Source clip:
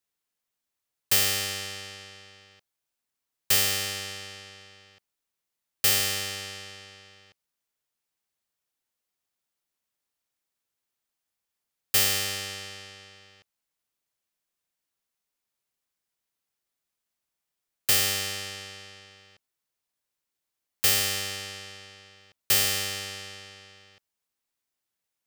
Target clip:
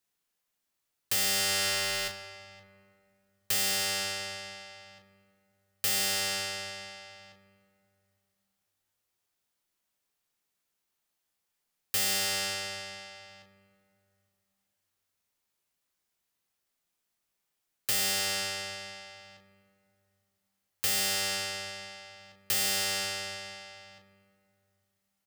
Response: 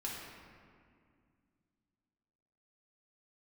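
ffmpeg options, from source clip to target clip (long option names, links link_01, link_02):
-filter_complex "[0:a]asettb=1/sr,asplit=3[link_01][link_02][link_03];[link_01]atrim=end=1.154[link_04];[link_02]atrim=start=1.15:end=2.08,asetpts=PTS-STARTPTS,afade=type=in:duration=0.004:curve=qsin,afade=type=out:start_time=0.926:duration=0.004:curve=qsin,aeval=exprs='val(0)+0.5*0.0251*sgn(val(0))':channel_layout=same[link_05];[link_03]atrim=start=2.076[link_06];[link_04][link_05]acrossfade=duration=0.004:curve1=hsin:curve2=qsin[link_07];[link_07][link_06]acrossfade=duration=0.004:curve1=qsin:curve2=hsin,aecho=1:1:19|36:0.355|0.398,asplit=2[link_08][link_09];[1:a]atrim=start_sample=2205,asetrate=38367,aresample=44100[link_10];[link_09][link_10]afir=irnorm=-1:irlink=0,volume=-10dB[link_11];[link_08][link_11]amix=inputs=2:normalize=0,alimiter=limit=-18.5dB:level=0:latency=1:release=404"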